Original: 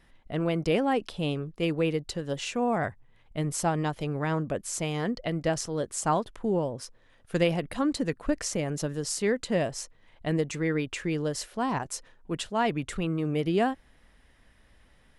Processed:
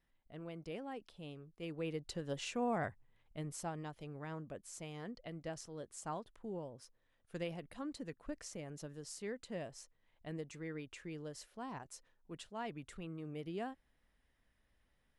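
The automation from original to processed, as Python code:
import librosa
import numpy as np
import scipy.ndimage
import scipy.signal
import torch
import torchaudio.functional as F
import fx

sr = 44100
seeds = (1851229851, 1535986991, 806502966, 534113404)

y = fx.gain(x, sr, db=fx.line((1.47, -20.0), (2.17, -9.0), (2.81, -9.0), (3.86, -17.0)))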